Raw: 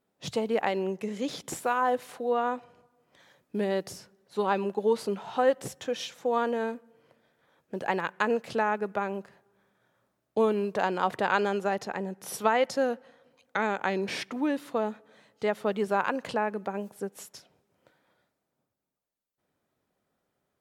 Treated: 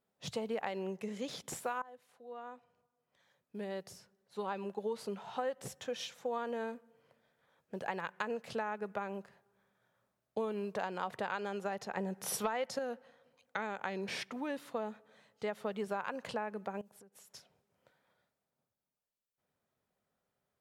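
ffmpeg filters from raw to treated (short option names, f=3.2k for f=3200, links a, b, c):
-filter_complex "[0:a]asettb=1/sr,asplit=3[a][b][c];[a]atrim=end=11.974[d];[b]atrim=start=11.97:end=12.79,asetpts=PTS-STARTPTS,afade=t=in:d=0.004:c=qsin,afade=t=out:st=0.816:d=0.004:c=qsin,acontrast=84[e];[c]atrim=start=12.786[f];[d][e]acrossfade=d=0.004:c1=hsin:c2=qsin[g];[g][f]acrossfade=d=0.004:c1=qsin:c2=hsin,asettb=1/sr,asplit=3[h][i][j];[h]atrim=end=16.814[k];[i]atrim=start=16.81:end=17.33,asetpts=PTS-STARTPTS,afade=t=in:d=0.004:c=qsin,afade=t=out:st=0.516:d=0.004:c=qsin,acompressor=threshold=-49dB:ratio=10:attack=3.2:release=140:knee=1:detection=peak[l];[j]atrim=start=17.326[m];[k][l]acrossfade=d=0.004:c1=hsin:c2=qsin[n];[n][m]acrossfade=d=0.004:c1=qsin:c2=hsin,asplit=2[o][p];[o]atrim=end=1.82,asetpts=PTS-STARTPTS,afade=t=out:st=1.816:d=0.004:c=hsin:silence=0.0749894[q];[p]atrim=start=1.82,asetpts=PTS-STARTPTS,afade=t=in:d=3.91:silence=0.0749894[r];[q][r]concat=n=2:v=0:a=1,equalizer=f=310:w=3.3:g=-7.5,acompressor=threshold=-27dB:ratio=6,volume=-5.5dB"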